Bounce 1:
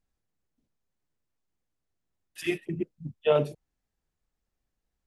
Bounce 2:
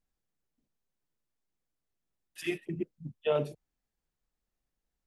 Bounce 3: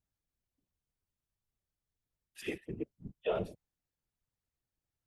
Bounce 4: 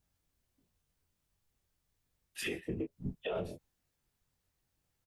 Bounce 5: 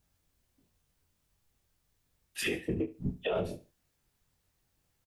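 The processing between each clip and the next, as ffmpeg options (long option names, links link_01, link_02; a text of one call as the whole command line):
ffmpeg -i in.wav -filter_complex "[0:a]equalizer=frequency=85:width=3:gain=-8,asplit=2[link_01][link_02];[link_02]alimiter=limit=-19.5dB:level=0:latency=1:release=119,volume=-0.5dB[link_03];[link_01][link_03]amix=inputs=2:normalize=0,volume=-9dB" out.wav
ffmpeg -i in.wav -af "afftfilt=real='hypot(re,im)*cos(2*PI*random(0))':imag='hypot(re,im)*sin(2*PI*random(1))':win_size=512:overlap=0.75,volume=1dB" out.wav
ffmpeg -i in.wav -filter_complex "[0:a]acompressor=threshold=-37dB:ratio=6,asplit=2[link_01][link_02];[link_02]aecho=0:1:22|34:0.596|0.316[link_03];[link_01][link_03]amix=inputs=2:normalize=0,alimiter=level_in=10.5dB:limit=-24dB:level=0:latency=1:release=155,volume=-10.5dB,volume=7.5dB" out.wav
ffmpeg -i in.wav -af "aecho=1:1:71|142:0.15|0.0359,volume=5dB" out.wav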